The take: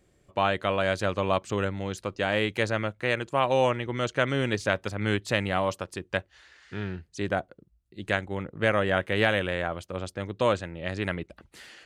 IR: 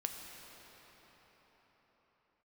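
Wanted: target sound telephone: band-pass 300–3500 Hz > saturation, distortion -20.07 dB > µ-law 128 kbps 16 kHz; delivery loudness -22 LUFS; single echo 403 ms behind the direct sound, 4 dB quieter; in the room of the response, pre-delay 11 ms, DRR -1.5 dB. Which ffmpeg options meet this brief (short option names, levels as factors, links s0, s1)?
-filter_complex "[0:a]aecho=1:1:403:0.631,asplit=2[s0][s1];[1:a]atrim=start_sample=2205,adelay=11[s2];[s1][s2]afir=irnorm=-1:irlink=0,volume=1.12[s3];[s0][s3]amix=inputs=2:normalize=0,highpass=300,lowpass=3500,asoftclip=threshold=0.251,volume=1.5" -ar 16000 -c:a pcm_mulaw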